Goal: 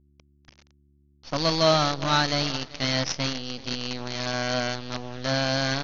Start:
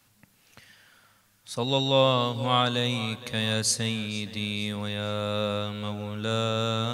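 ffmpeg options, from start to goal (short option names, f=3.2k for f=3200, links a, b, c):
-af "aresample=11025,acrusher=bits=5:dc=4:mix=0:aa=0.000001,aresample=44100,aeval=exprs='val(0)+0.000891*(sin(2*PI*60*n/s)+sin(2*PI*2*60*n/s)/2+sin(2*PI*3*60*n/s)/3+sin(2*PI*4*60*n/s)/4+sin(2*PI*5*60*n/s)/5)':c=same,asetrate=52479,aresample=44100,volume=1dB"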